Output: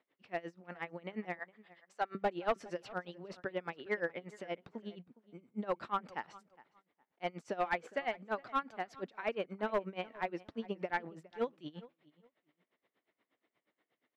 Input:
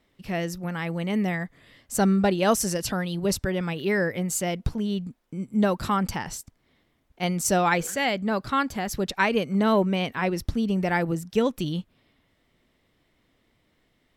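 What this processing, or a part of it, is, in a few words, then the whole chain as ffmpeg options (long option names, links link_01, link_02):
helicopter radio: -filter_complex "[0:a]asettb=1/sr,asplit=3[link_01][link_02][link_03];[link_01]atrim=end=1.394[link_04];[link_02]atrim=start=1.39:end=2.15,asetpts=PTS-STARTPTS,afade=type=in:duration=0.004:curve=qsin,afade=type=out:start_time=0.756:duration=0.004:curve=qsin,highpass=640[link_05];[link_03]atrim=start=2.146[link_06];[link_04][link_05]acrossfade=duration=0.004:curve1=hsin:curve2=qsin[link_07];[link_07][link_06]acrossfade=duration=0.004:curve1=qsin:curve2=hsin,highpass=360,lowpass=2600,aeval=exprs='val(0)*pow(10,-23*(0.5-0.5*cos(2*PI*8.4*n/s))/20)':channel_layout=same,asoftclip=type=hard:threshold=-21dB,acrossover=split=3500[link_08][link_09];[link_09]acompressor=threshold=-55dB:ratio=4:attack=1:release=60[link_10];[link_08][link_10]amix=inputs=2:normalize=0,asplit=2[link_11][link_12];[link_12]adelay=412,lowpass=frequency=3000:poles=1,volume=-20dB,asplit=2[link_13][link_14];[link_14]adelay=412,lowpass=frequency=3000:poles=1,volume=0.23[link_15];[link_11][link_13][link_15]amix=inputs=3:normalize=0,volume=-4dB"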